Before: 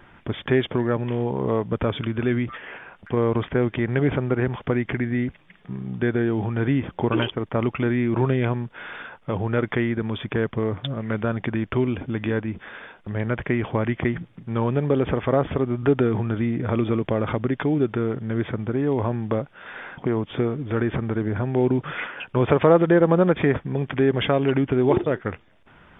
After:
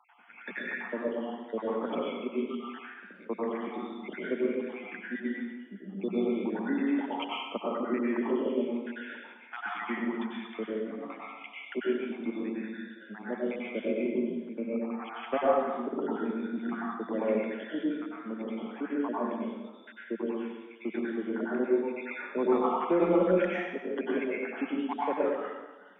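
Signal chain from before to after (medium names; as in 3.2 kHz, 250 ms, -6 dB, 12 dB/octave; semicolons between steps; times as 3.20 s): random holes in the spectrogram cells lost 80%; steep high-pass 190 Hz 96 dB/octave; saturation -9 dBFS, distortion -24 dB; plate-style reverb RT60 1.2 s, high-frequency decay 0.85×, pre-delay 85 ms, DRR -7 dB; trim -7.5 dB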